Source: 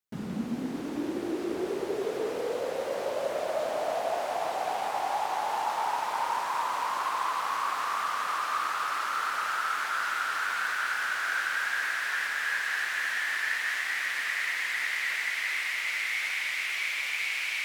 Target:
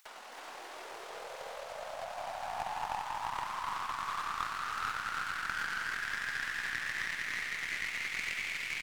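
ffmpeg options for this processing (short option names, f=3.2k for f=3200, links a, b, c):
-af "equalizer=f=13k:w=1:g=-4,alimiter=limit=-24dB:level=0:latency=1:release=213,highpass=f=700:w=0.5412,highpass=f=700:w=1.3066,aecho=1:1:200|400|600|800:0.668|0.201|0.0602|0.018,atempo=2,acompressor=mode=upward:threshold=-32dB:ratio=2.5,aecho=1:1:319:0.668,aeval=exprs='0.316*(cos(1*acos(clip(val(0)/0.316,-1,1)))-cos(1*PI/2))+0.1*(cos(2*acos(clip(val(0)/0.316,-1,1)))-cos(2*PI/2))+0.0158*(cos(5*acos(clip(val(0)/0.316,-1,1)))-cos(5*PI/2))+0.0398*(cos(7*acos(clip(val(0)/0.316,-1,1)))-cos(7*PI/2))':c=same"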